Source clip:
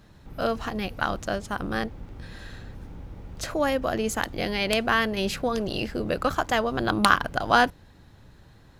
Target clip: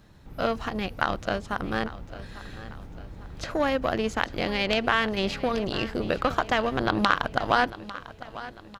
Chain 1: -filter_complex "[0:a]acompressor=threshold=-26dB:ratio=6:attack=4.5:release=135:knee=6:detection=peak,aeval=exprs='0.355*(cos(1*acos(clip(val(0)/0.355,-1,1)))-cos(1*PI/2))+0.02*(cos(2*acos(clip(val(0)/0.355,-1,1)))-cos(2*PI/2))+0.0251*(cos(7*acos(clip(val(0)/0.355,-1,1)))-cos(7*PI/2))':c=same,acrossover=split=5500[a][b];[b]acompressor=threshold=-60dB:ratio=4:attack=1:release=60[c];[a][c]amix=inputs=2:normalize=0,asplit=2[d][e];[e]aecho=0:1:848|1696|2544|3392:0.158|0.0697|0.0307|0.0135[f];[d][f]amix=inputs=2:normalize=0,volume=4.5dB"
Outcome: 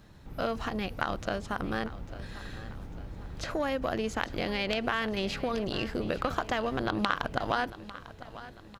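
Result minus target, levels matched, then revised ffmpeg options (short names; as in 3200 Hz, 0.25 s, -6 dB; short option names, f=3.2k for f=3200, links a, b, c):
compressor: peak gain reduction +5.5 dB
-filter_complex "[0:a]acompressor=threshold=-19.5dB:ratio=6:attack=4.5:release=135:knee=6:detection=peak,aeval=exprs='0.355*(cos(1*acos(clip(val(0)/0.355,-1,1)))-cos(1*PI/2))+0.02*(cos(2*acos(clip(val(0)/0.355,-1,1)))-cos(2*PI/2))+0.0251*(cos(7*acos(clip(val(0)/0.355,-1,1)))-cos(7*PI/2))':c=same,acrossover=split=5500[a][b];[b]acompressor=threshold=-60dB:ratio=4:attack=1:release=60[c];[a][c]amix=inputs=2:normalize=0,asplit=2[d][e];[e]aecho=0:1:848|1696|2544|3392:0.158|0.0697|0.0307|0.0135[f];[d][f]amix=inputs=2:normalize=0,volume=4.5dB"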